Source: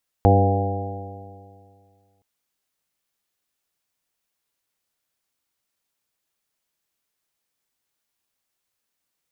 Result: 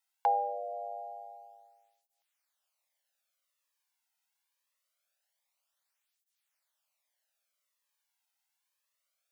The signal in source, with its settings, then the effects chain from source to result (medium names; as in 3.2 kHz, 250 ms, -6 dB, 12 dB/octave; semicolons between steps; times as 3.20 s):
stretched partials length 1.97 s, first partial 96.1 Hz, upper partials -8.5/-8/-10.5/-5/-13.5/-6/-6 dB, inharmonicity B 0.0016, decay 2.15 s, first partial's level -13 dB
Chebyshev high-pass 550 Hz, order 6; cancelling through-zero flanger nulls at 0.24 Hz, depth 1.8 ms